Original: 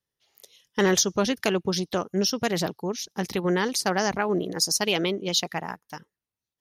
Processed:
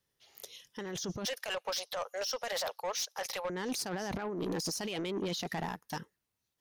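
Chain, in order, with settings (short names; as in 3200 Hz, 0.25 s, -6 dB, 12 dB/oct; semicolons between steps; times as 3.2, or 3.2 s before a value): 1.25–3.5 elliptic high-pass 530 Hz, stop band 40 dB; negative-ratio compressor -32 dBFS, ratio -1; limiter -20 dBFS, peak gain reduction 10 dB; soft clip -30 dBFS, distortion -11 dB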